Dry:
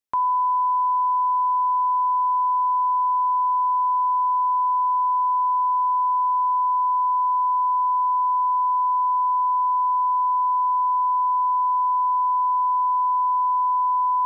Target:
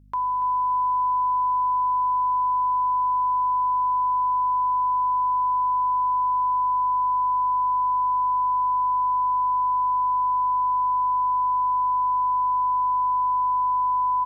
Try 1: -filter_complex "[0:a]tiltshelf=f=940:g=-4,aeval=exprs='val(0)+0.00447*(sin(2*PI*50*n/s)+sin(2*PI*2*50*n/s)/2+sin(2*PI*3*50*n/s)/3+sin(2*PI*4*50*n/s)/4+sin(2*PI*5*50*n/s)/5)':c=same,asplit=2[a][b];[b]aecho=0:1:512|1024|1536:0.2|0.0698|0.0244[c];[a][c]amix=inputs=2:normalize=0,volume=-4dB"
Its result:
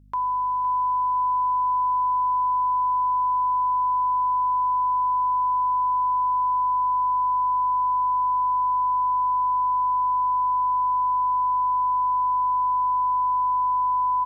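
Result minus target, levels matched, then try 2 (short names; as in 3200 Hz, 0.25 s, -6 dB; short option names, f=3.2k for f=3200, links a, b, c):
echo 0.226 s late
-filter_complex "[0:a]tiltshelf=f=940:g=-4,aeval=exprs='val(0)+0.00447*(sin(2*PI*50*n/s)+sin(2*PI*2*50*n/s)/2+sin(2*PI*3*50*n/s)/3+sin(2*PI*4*50*n/s)/4+sin(2*PI*5*50*n/s)/5)':c=same,asplit=2[a][b];[b]aecho=0:1:286|572|858:0.2|0.0698|0.0244[c];[a][c]amix=inputs=2:normalize=0,volume=-4dB"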